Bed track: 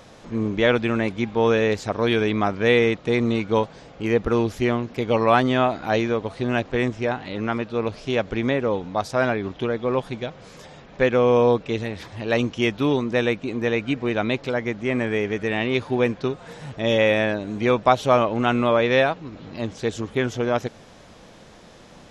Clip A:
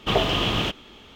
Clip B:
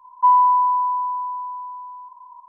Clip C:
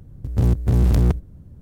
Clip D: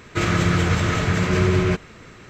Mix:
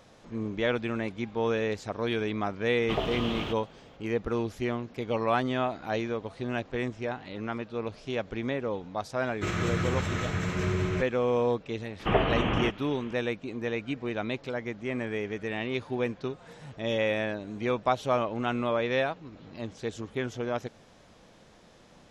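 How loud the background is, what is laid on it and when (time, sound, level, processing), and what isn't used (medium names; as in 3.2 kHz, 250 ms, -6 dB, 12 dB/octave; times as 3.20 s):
bed track -9 dB
2.82 s: add A -8 dB + treble shelf 2.8 kHz -8 dB
9.26 s: add D -10 dB + band-stop 4.7 kHz, Q 9.8
11.99 s: add A -0.5 dB + CVSD coder 16 kbps
not used: B, C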